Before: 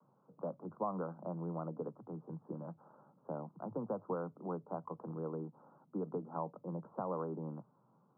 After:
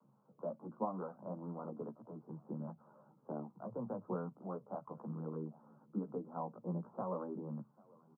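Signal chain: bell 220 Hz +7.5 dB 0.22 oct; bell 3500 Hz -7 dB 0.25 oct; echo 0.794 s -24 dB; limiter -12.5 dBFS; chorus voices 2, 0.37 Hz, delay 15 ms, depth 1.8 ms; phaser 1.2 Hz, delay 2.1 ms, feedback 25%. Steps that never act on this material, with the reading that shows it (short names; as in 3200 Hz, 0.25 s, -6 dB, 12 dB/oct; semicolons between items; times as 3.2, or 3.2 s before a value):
bell 3500 Hz: input band ends at 1500 Hz; limiter -12.5 dBFS: input peak -22.0 dBFS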